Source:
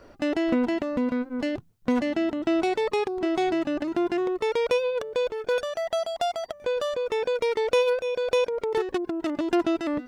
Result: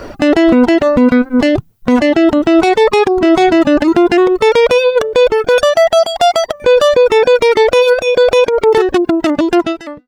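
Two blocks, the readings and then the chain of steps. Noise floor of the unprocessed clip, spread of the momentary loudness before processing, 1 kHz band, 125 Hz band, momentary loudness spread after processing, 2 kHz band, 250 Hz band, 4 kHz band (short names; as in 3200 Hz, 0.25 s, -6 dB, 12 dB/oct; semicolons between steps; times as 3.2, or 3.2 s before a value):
-51 dBFS, 5 LU, +16.0 dB, n/a, 4 LU, +16.0 dB, +15.5 dB, +16.0 dB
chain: ending faded out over 1.11 s; reverb removal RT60 1.1 s; maximiser +23.5 dB; gain -1 dB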